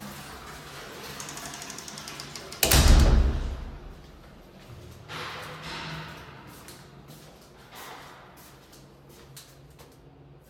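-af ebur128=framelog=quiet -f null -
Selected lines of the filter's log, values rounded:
Integrated loudness:
  I:         -27.5 LUFS
  Threshold: -41.0 LUFS
Loudness range:
  LRA:        21.1 LU
  Threshold: -50.0 LUFS
  LRA low:   -47.1 LUFS
  LRA high:  -26.0 LUFS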